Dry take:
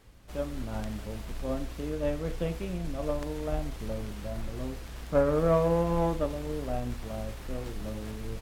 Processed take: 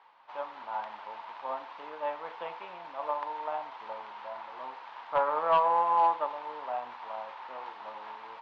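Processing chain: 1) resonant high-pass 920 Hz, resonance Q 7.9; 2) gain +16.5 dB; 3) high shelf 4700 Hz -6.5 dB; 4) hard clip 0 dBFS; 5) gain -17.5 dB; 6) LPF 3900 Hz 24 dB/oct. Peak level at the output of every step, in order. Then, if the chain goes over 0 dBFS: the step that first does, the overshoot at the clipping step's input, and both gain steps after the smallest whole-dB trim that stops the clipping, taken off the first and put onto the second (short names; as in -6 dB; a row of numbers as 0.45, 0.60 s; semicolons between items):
-10.5, +6.0, +6.0, 0.0, -17.5, -17.0 dBFS; step 2, 6.0 dB; step 2 +10.5 dB, step 5 -11.5 dB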